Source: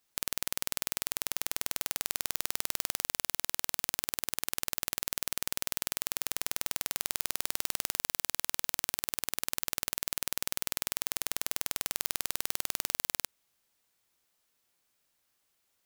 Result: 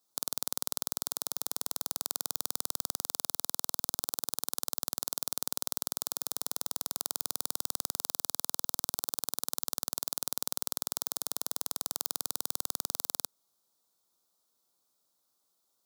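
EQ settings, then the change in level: high-pass 150 Hz 12 dB/octave; high-order bell 2.2 kHz -14.5 dB 1.1 oct; 0.0 dB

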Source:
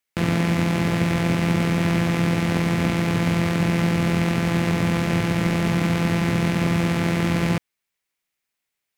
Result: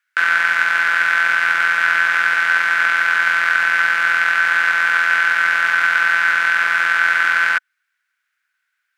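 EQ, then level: resonant high-pass 1.5 kHz, resonance Q 12; treble shelf 6 kHz -9 dB; +5.0 dB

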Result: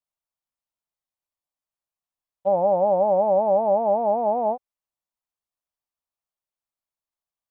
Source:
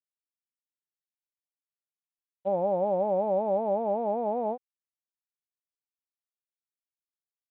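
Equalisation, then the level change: bass shelf 110 Hz +11 dB; high-order bell 830 Hz +8 dB 1.3 oct; 0.0 dB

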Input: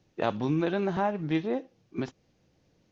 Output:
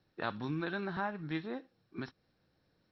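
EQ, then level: band-stop 2 kHz, Q 29; dynamic bell 570 Hz, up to -6 dB, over -42 dBFS, Q 0.97; rippled Chebyshev low-pass 5.6 kHz, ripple 9 dB; +1.0 dB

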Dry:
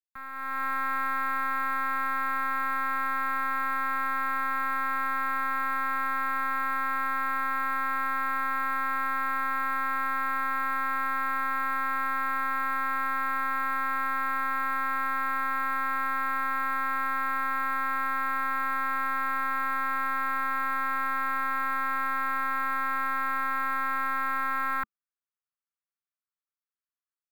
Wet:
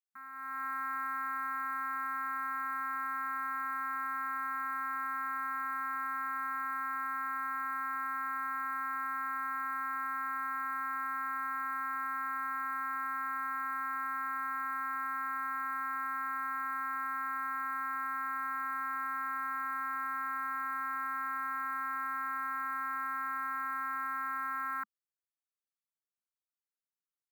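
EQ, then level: brick-wall FIR high-pass 190 Hz; static phaser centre 1.3 kHz, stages 4; -6.5 dB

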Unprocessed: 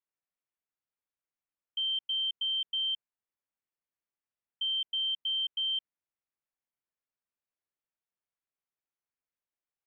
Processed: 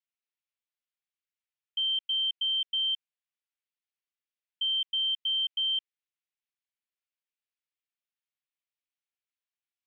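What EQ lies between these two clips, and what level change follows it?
band-pass filter 2.9 kHz, Q 1.5; +3.0 dB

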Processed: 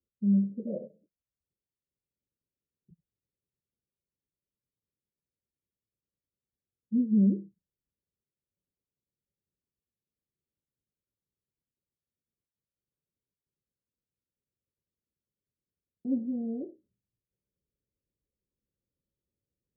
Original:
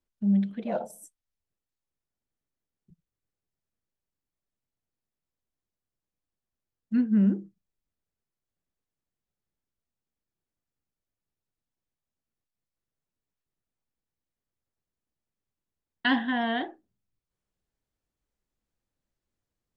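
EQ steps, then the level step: high-pass 44 Hz; rippled Chebyshev low-pass 580 Hz, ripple 3 dB; 0.0 dB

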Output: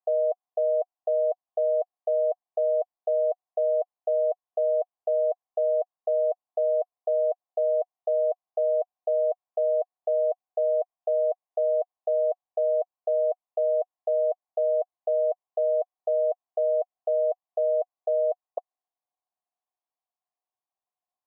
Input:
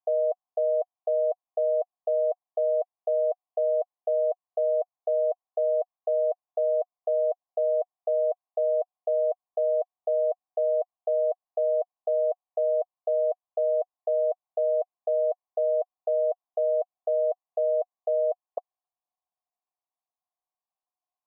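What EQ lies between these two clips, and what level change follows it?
high-pass 600 Hz 12 dB/octave; tilt EQ -5 dB/octave; 0.0 dB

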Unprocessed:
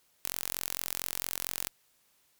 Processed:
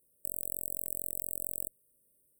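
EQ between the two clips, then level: brick-wall FIR band-stop 620–8000 Hz; 0.0 dB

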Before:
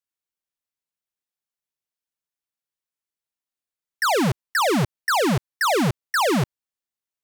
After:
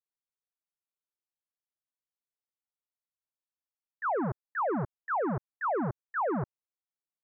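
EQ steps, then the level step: steep low-pass 1.5 kHz 36 dB/octave; distance through air 220 m; bass shelf 320 Hz -6 dB; -6.5 dB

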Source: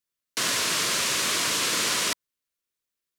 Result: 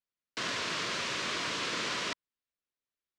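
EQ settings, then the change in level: distance through air 140 m; -5.0 dB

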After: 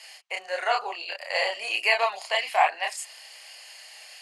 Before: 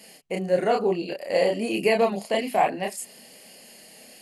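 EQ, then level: high-pass 860 Hz 24 dB/octave; low-pass 6.5 kHz 12 dB/octave; +6.0 dB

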